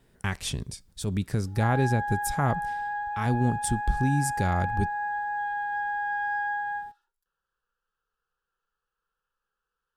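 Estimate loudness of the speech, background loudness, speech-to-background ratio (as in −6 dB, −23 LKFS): −28.5 LKFS, −30.5 LKFS, 2.0 dB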